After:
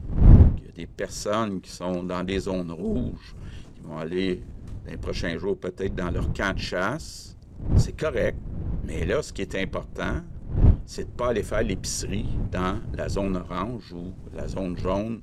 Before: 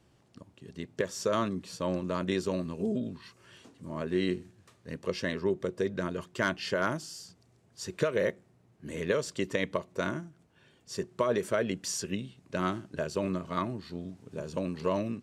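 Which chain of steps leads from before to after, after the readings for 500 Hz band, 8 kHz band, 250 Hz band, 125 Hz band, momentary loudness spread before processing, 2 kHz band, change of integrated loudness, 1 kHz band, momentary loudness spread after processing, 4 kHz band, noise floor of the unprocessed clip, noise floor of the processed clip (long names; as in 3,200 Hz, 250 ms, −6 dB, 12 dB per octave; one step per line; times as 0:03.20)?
+2.5 dB, +3.5 dB, +5.5 dB, +15.0 dB, 13 LU, +3.0 dB, +6.5 dB, +3.5 dB, 16 LU, +3.5 dB, −65 dBFS, −44 dBFS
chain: wind on the microphone 99 Hz −28 dBFS
transient designer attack −8 dB, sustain −4 dB
level +5 dB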